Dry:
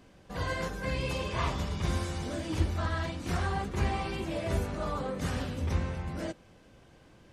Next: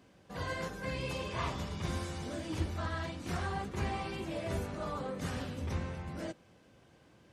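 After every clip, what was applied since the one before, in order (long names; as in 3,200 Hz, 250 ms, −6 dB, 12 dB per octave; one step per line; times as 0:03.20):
high-pass filter 76 Hz
level −4 dB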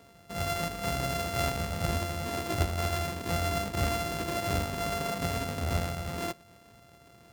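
samples sorted by size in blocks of 64 samples
level +6 dB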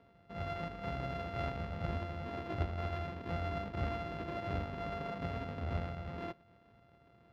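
high-frequency loss of the air 330 metres
level −6.5 dB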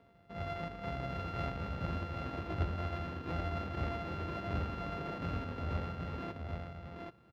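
single-tap delay 780 ms −4 dB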